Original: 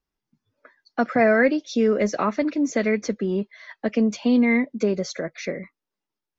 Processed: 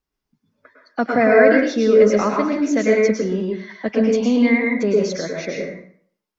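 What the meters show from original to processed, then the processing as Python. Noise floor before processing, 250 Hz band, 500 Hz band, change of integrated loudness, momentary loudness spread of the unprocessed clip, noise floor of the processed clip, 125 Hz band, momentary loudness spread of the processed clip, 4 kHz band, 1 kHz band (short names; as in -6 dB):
under -85 dBFS, +3.5 dB, +7.0 dB, +5.0 dB, 12 LU, -82 dBFS, n/a, 14 LU, +4.0 dB, +4.0 dB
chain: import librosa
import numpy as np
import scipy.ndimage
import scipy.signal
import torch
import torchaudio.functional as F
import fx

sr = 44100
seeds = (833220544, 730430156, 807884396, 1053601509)

y = fx.rev_plate(x, sr, seeds[0], rt60_s=0.55, hf_ratio=0.8, predelay_ms=95, drr_db=-0.5)
y = y * 10.0 ** (1.0 / 20.0)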